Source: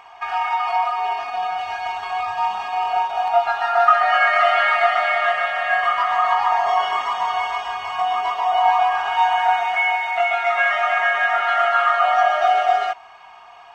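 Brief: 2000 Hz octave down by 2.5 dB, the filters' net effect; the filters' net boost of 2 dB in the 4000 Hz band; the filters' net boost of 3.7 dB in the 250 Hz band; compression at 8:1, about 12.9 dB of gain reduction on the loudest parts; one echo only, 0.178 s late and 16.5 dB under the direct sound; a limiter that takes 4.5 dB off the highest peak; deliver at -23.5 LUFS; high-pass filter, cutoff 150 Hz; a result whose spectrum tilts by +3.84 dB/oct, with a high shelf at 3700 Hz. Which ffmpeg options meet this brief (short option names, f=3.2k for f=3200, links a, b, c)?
-af "highpass=150,equalizer=f=250:t=o:g=6,equalizer=f=2k:t=o:g=-5,highshelf=f=3.7k:g=5,equalizer=f=4k:t=o:g=3,acompressor=threshold=-25dB:ratio=8,alimiter=limit=-20.5dB:level=0:latency=1,aecho=1:1:178:0.15,volume=5.5dB"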